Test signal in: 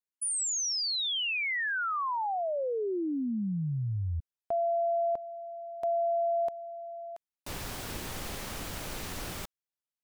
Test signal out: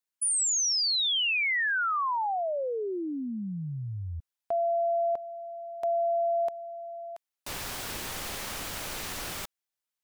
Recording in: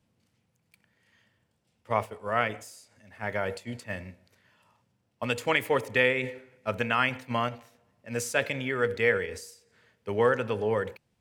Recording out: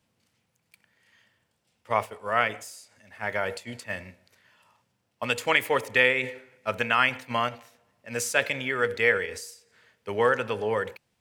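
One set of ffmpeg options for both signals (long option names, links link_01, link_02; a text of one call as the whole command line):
ffmpeg -i in.wav -af "lowshelf=frequency=490:gain=-8.5,volume=4.5dB" out.wav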